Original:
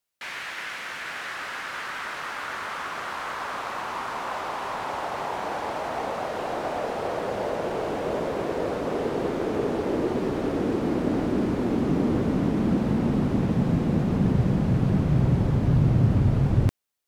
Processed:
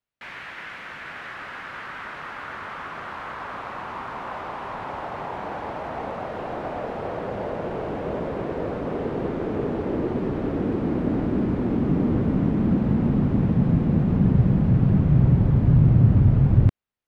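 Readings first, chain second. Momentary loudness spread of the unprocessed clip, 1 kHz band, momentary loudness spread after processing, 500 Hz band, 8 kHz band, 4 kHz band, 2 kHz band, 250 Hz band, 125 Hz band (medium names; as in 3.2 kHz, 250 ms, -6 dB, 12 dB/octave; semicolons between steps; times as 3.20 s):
10 LU, -2.0 dB, 17 LU, -1.5 dB, under -10 dB, -7.0 dB, -3.0 dB, +2.0 dB, +4.5 dB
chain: tone controls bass +7 dB, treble -14 dB; trim -2 dB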